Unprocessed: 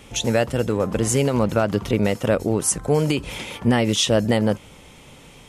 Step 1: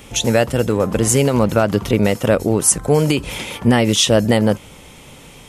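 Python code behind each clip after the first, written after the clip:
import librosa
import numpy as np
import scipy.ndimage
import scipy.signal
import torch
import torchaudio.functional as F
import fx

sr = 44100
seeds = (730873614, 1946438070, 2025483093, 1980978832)

y = fx.high_shelf(x, sr, hz=12000.0, db=9.0)
y = y * librosa.db_to_amplitude(4.5)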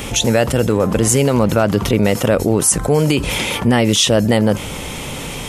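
y = fx.env_flatten(x, sr, amount_pct=50)
y = y * librosa.db_to_amplitude(-1.5)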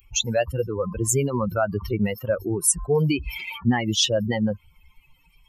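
y = fx.bin_expand(x, sr, power=3.0)
y = y * librosa.db_to_amplitude(-2.0)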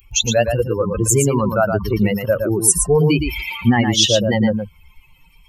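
y = x + 10.0 ** (-6.0 / 20.0) * np.pad(x, (int(115 * sr / 1000.0), 0))[:len(x)]
y = y * librosa.db_to_amplitude(6.0)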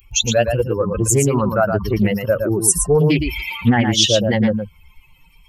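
y = fx.doppler_dist(x, sr, depth_ms=0.24)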